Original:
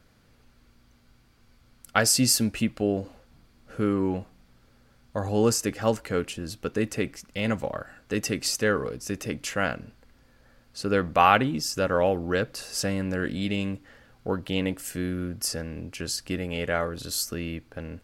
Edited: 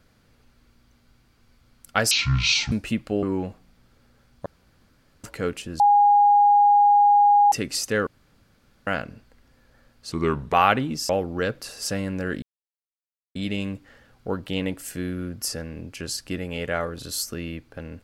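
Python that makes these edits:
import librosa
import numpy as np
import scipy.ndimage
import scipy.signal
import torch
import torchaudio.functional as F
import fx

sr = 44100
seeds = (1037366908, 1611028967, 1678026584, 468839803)

y = fx.edit(x, sr, fx.speed_span(start_s=2.11, length_s=0.31, speed=0.51),
    fx.cut(start_s=2.93, length_s=1.01),
    fx.room_tone_fill(start_s=5.17, length_s=0.78),
    fx.bleep(start_s=6.51, length_s=1.72, hz=820.0, db=-12.5),
    fx.room_tone_fill(start_s=8.78, length_s=0.8),
    fx.speed_span(start_s=10.83, length_s=0.34, speed=0.82),
    fx.cut(start_s=11.73, length_s=0.29),
    fx.insert_silence(at_s=13.35, length_s=0.93), tone=tone)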